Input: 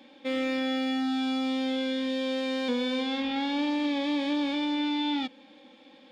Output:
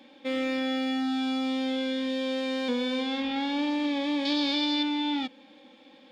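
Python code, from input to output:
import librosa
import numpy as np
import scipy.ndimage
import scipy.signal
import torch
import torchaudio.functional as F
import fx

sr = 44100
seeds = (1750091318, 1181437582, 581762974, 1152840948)

y = fx.peak_eq(x, sr, hz=4600.0, db=15.0, octaves=0.83, at=(4.25, 4.83))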